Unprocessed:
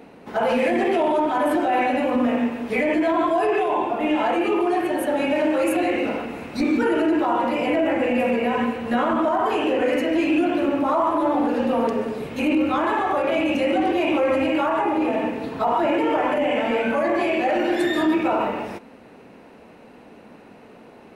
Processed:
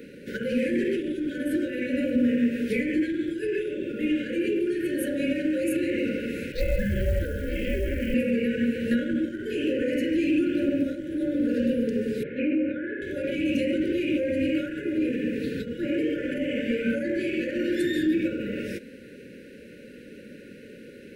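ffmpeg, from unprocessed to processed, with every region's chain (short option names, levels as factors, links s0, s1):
-filter_complex "[0:a]asettb=1/sr,asplit=3[s0][s1][s2];[s0]atrim=end=6.524[s3];[s1]atrim=start=6.52:end=8.14,asetpts=PTS-STARTPTS,afade=t=in:d=0.004:c=qsin,afade=t=out:st=1.616:d=0.004:c=qsin,highpass=180,lowpass=3700,acrusher=bits=7:mode=log:mix=0:aa=0.000001,aeval=exprs='val(0)*sin(2*PI*260*n/s)':c=same[s4];[s2]atrim=start=8.136[s5];[s3][s4]acrossfade=d=0.004:c1=hsin:c2=qsin[s6];[s6][s5]acrossfade=d=0.004:c1=qsin:c2=hsin,asettb=1/sr,asplit=3[s7][s8][s9];[s7]atrim=end=12.234[s10];[s8]atrim=start=12.23:end=13.02,asetpts=PTS-STARTPTS,afade=t=in:d=0.004:c=qsin,afade=t=out:st=0.786:d=0.004:c=qsin,lowpass=f=1900:w=0.5412,lowpass=f=1900:w=1.3066,aemphasis=mode=production:type=bsi[s11];[s9]atrim=start=13.016[s12];[s10][s11]acrossfade=d=0.004:c1=hsin:c2=qsin[s13];[s13][s12]acrossfade=d=0.004:c1=qsin:c2=hsin,acrossover=split=260[s14][s15];[s15]acompressor=threshold=0.0398:ratio=10[s16];[s14][s16]amix=inputs=2:normalize=0,highshelf=f=10000:g=6,afftfilt=real='re*(1-between(b*sr/4096,590,1400))':imag='im*(1-between(b*sr/4096,590,1400))':win_size=4096:overlap=0.75,volume=1.26"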